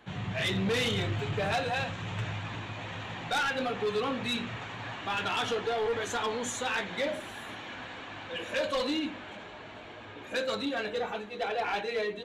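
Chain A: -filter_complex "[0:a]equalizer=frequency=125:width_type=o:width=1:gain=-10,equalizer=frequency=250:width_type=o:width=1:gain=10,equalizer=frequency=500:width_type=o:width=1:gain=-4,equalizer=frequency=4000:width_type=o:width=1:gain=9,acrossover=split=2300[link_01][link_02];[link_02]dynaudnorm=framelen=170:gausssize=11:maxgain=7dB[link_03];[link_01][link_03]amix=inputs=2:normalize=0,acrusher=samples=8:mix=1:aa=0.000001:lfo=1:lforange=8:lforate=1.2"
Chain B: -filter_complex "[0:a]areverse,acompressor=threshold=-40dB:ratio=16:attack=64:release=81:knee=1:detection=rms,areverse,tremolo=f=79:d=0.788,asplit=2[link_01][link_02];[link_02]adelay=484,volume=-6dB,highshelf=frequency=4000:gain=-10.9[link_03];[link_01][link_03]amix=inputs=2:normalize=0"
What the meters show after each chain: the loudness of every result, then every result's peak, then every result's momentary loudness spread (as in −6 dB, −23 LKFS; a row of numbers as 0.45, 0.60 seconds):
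−26.5, −43.0 LKFS; −10.0, −29.0 dBFS; 12, 3 LU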